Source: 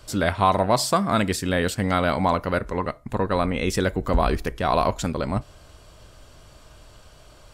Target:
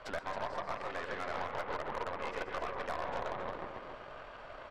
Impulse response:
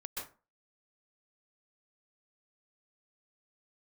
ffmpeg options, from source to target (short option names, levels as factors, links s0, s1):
-filter_complex "[0:a]lowpass=3200,equalizer=f=320:w=1.3:g=-9,asplit=5[s0][s1][s2][s3][s4];[s1]adelay=231,afreqshift=-140,volume=0.316[s5];[s2]adelay=462,afreqshift=-280,volume=0.105[s6];[s3]adelay=693,afreqshift=-420,volume=0.0343[s7];[s4]adelay=924,afreqshift=-560,volume=0.0114[s8];[s0][s5][s6][s7][s8]amix=inputs=5:normalize=0,acompressor=threshold=0.0158:ratio=16,atempo=1.6,acrossover=split=320 2300:gain=0.0794 1 0.178[s9][s10][s11];[s9][s10][s11]amix=inputs=3:normalize=0,bandreject=f=50.5:t=h:w=4,bandreject=f=101:t=h:w=4,bandreject=f=151.5:t=h:w=4,bandreject=f=202:t=h:w=4,bandreject=f=252.5:t=h:w=4,bandreject=f=303:t=h:w=4,bandreject=f=353.5:t=h:w=4,bandreject=f=404:t=h:w=4,bandreject=f=454.5:t=h:w=4,bandreject=f=505:t=h:w=4,asplit=2[s12][s13];[1:a]atrim=start_sample=2205[s14];[s13][s14]afir=irnorm=-1:irlink=0,volume=1[s15];[s12][s15]amix=inputs=2:normalize=0,alimiter=level_in=1.88:limit=0.0631:level=0:latency=1:release=419,volume=0.531,volume=42.2,asoftclip=hard,volume=0.0237,aecho=1:1:272:0.422,aeval=exprs='0.0355*(cos(1*acos(clip(val(0)/0.0355,-1,1)))-cos(1*PI/2))+0.00562*(cos(6*acos(clip(val(0)/0.0355,-1,1)))-cos(6*PI/2))':c=same,volume=1.41"